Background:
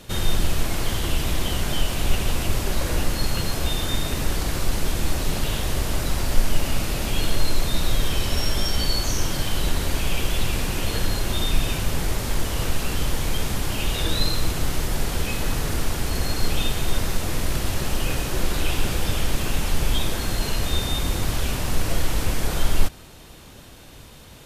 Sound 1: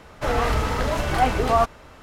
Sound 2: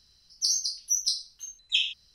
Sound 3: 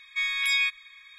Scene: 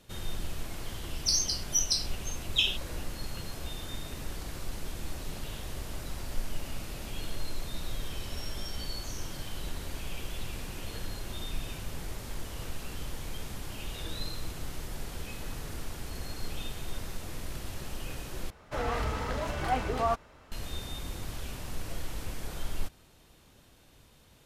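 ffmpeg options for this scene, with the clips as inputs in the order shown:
ffmpeg -i bed.wav -i cue0.wav -i cue1.wav -filter_complex "[0:a]volume=-14.5dB,asplit=2[link_01][link_02];[link_01]atrim=end=18.504[link_03];[1:a]atrim=end=2.02,asetpts=PTS-STARTPTS,volume=-9.5dB[link_04];[link_02]atrim=start=20.516[link_05];[2:a]atrim=end=2.14,asetpts=PTS-STARTPTS,volume=-1.5dB,afade=type=in:duration=0.004:curve=hsin,afade=type=out:start_time=2.136:duration=0.004:curve=hsin,adelay=840[link_06];[link_03][link_04]acrossfade=duration=0.004:curve1=hsin:curve2=hsin[link_07];[link_07][link_05]acrossfade=duration=0.004:curve1=hsin:curve2=hsin[link_08];[link_08][link_06]amix=inputs=2:normalize=0" out.wav

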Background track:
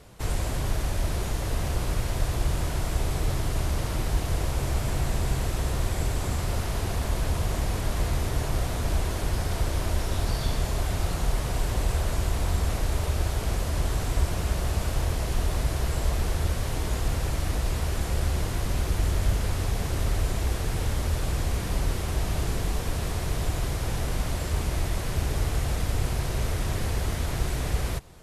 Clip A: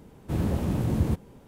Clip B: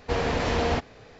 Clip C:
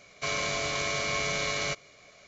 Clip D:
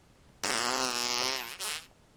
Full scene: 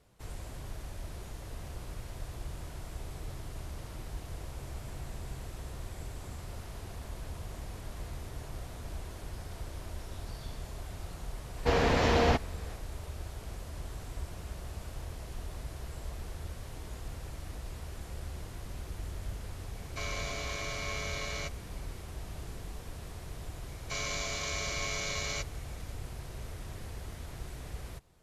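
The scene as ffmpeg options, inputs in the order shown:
ffmpeg -i bed.wav -i cue0.wav -i cue1.wav -i cue2.wav -filter_complex "[3:a]asplit=2[link_01][link_02];[0:a]volume=-15dB[link_03];[link_02]aemphasis=mode=production:type=cd[link_04];[2:a]atrim=end=1.19,asetpts=PTS-STARTPTS,volume=-0.5dB,afade=type=in:duration=0.004:curve=hsin,afade=type=out:start_time=1.186:duration=0.004:curve=hsin,adelay=11570[link_05];[link_01]atrim=end=2.27,asetpts=PTS-STARTPTS,volume=-8dB,afade=type=in:duration=0.004:curve=hsin,afade=type=out:start_time=2.266:duration=0.004:curve=hsin,adelay=19740[link_06];[link_04]atrim=end=2.27,asetpts=PTS-STARTPTS,volume=-7.5dB,afade=type=in:duration=0.004:curve=hsin,afade=type=out:start_time=2.266:duration=0.004:curve=hsin,adelay=23680[link_07];[link_03][link_05][link_06][link_07]amix=inputs=4:normalize=0" out.wav

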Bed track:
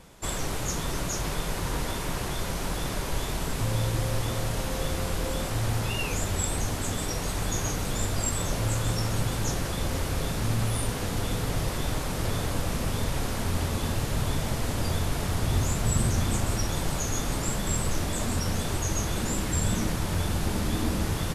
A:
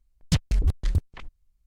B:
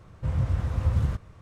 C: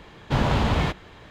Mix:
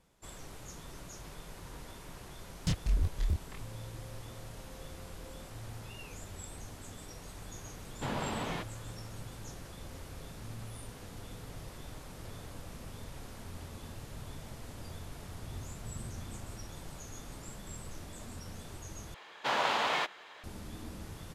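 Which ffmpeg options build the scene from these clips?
ffmpeg -i bed.wav -i cue0.wav -i cue1.wav -i cue2.wav -filter_complex "[3:a]asplit=2[link_01][link_02];[0:a]volume=-17.5dB[link_03];[1:a]flanger=delay=22.5:depth=5:speed=1.4[link_04];[link_01]highpass=170[link_05];[link_02]highpass=700[link_06];[link_03]asplit=2[link_07][link_08];[link_07]atrim=end=19.144[link_09];[link_06]atrim=end=1.3,asetpts=PTS-STARTPTS,volume=-1.5dB[link_10];[link_08]atrim=start=20.436[link_11];[link_04]atrim=end=1.66,asetpts=PTS-STARTPTS,volume=-5dB,afade=type=in:duration=0.004:curve=hsin,afade=type=out:start_time=1.656:duration=0.004:curve=hsin,adelay=2350[link_12];[link_05]atrim=end=1.3,asetpts=PTS-STARTPTS,volume=-11.5dB,afade=type=in:duration=0.004:curve=hsin,afade=type=out:start_time=1.296:duration=0.004:curve=hsin,adelay=7710[link_13];[link_09][link_10]acrossfade=duration=0.004:curve1=hsin:curve2=hsin[link_14];[link_14][link_11]acrossfade=duration=0.004:curve1=hsin:curve2=hsin[link_15];[link_15][link_12][link_13]amix=inputs=3:normalize=0" out.wav

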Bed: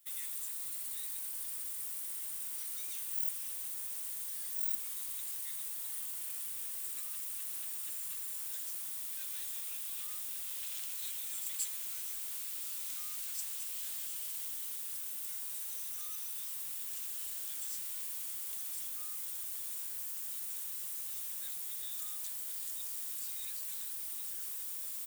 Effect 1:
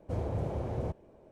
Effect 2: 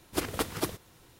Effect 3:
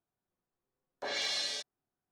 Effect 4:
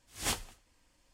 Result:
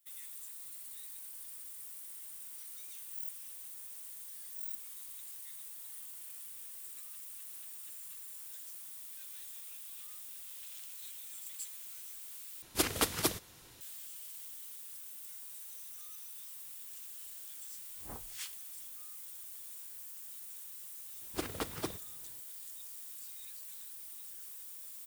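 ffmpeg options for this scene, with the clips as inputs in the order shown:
ffmpeg -i bed.wav -i cue0.wav -i cue1.wav -i cue2.wav -i cue3.wav -filter_complex "[2:a]asplit=2[link_01][link_02];[0:a]volume=-7dB[link_03];[link_01]highshelf=frequency=2100:gain=8.5[link_04];[4:a]acrossover=split=1400[link_05][link_06];[link_06]adelay=300[link_07];[link_05][link_07]amix=inputs=2:normalize=0[link_08];[link_02]lowpass=11000[link_09];[link_03]asplit=2[link_10][link_11];[link_10]atrim=end=12.624[link_12];[link_04]atrim=end=1.19,asetpts=PTS-STARTPTS,volume=-3dB[link_13];[link_11]atrim=start=13.806[link_14];[link_08]atrim=end=1.13,asetpts=PTS-STARTPTS,volume=-10dB,afade=type=in:duration=0.004:curve=hsin,afade=type=out:start_time=1.126:duration=0.004:curve=hsin,adelay=17830[link_15];[link_09]atrim=end=1.19,asetpts=PTS-STARTPTS,volume=-7dB,afade=type=in:duration=0.004:curve=hsin,afade=type=out:start_time=1.186:duration=0.004:curve=hsin,adelay=21210[link_16];[link_12][link_13]acrossfade=duration=0.004:curve1=hsin:curve2=hsin[link_17];[link_17][link_14]acrossfade=duration=0.004:curve1=hsin:curve2=hsin[link_18];[link_18][link_15][link_16]amix=inputs=3:normalize=0" out.wav

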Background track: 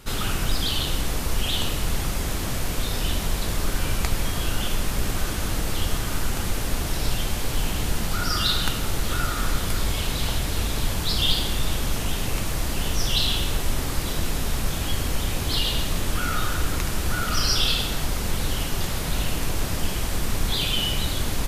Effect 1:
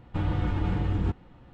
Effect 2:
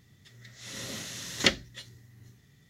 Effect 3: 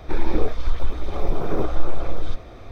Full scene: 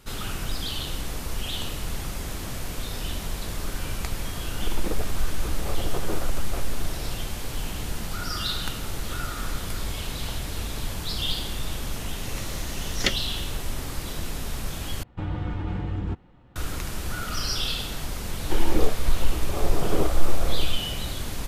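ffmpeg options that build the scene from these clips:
ffmpeg -i bed.wav -i cue0.wav -i cue1.wav -i cue2.wav -filter_complex "[3:a]asplit=2[link_01][link_02];[0:a]volume=-6dB[link_03];[link_01]asoftclip=type=tanh:threshold=-15.5dB[link_04];[link_03]asplit=2[link_05][link_06];[link_05]atrim=end=15.034[link_07];[1:a]atrim=end=1.53,asetpts=PTS-STARTPTS,volume=-2.5dB[link_08];[link_06]atrim=start=16.556[link_09];[link_04]atrim=end=2.71,asetpts=PTS-STARTPTS,volume=-1.5dB,afade=type=in:duration=0.004:curve=hsin,afade=type=out:start_time=2.706:duration=0.004:curve=hsin,adelay=199773S[link_10];[2:a]atrim=end=2.69,asetpts=PTS-STARTPTS,volume=-1.5dB,afade=type=in:duration=0.004:curve=hsin,afade=type=out:start_time=2.686:duration=0.004:curve=hsin,adelay=11600[link_11];[link_02]atrim=end=2.71,asetpts=PTS-STARTPTS,volume=-0.5dB,afade=type=in:duration=0.004:curve=hsin,afade=type=out:start_time=2.706:duration=0.004:curve=hsin,adelay=18410[link_12];[link_07][link_08]acrossfade=duration=0.004:curve1=hsin:curve2=hsin[link_13];[link_13][link_09]acrossfade=duration=0.004:curve1=hsin:curve2=hsin[link_14];[link_14][link_10][link_11][link_12]amix=inputs=4:normalize=0" out.wav

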